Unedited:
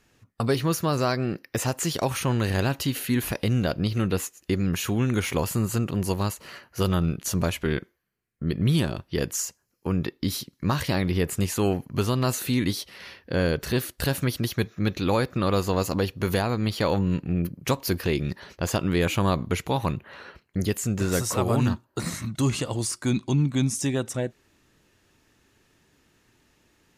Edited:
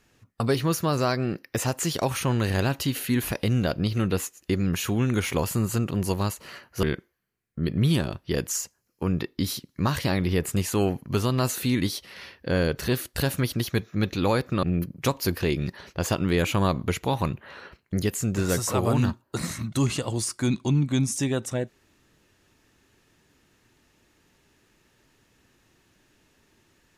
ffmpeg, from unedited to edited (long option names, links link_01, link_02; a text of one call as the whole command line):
ffmpeg -i in.wav -filter_complex "[0:a]asplit=3[link_01][link_02][link_03];[link_01]atrim=end=6.832[link_04];[link_02]atrim=start=7.668:end=15.472[link_05];[link_03]atrim=start=17.258[link_06];[link_04][link_05]acrossfade=duration=0.004:curve1=hsin:curve2=hsin[link_07];[link_07][link_06]acrossfade=duration=0.004:curve1=hsin:curve2=hsin" out.wav